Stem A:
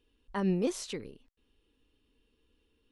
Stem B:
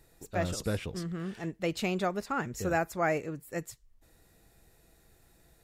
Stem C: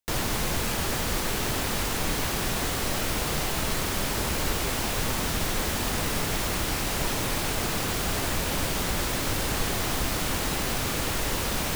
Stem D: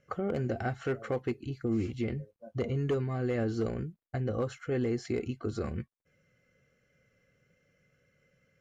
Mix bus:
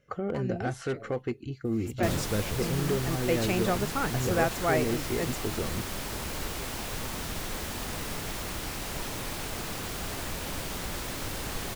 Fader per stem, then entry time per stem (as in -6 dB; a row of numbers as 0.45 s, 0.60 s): -7.5 dB, +1.5 dB, -7.5 dB, +0.5 dB; 0.00 s, 1.65 s, 1.95 s, 0.00 s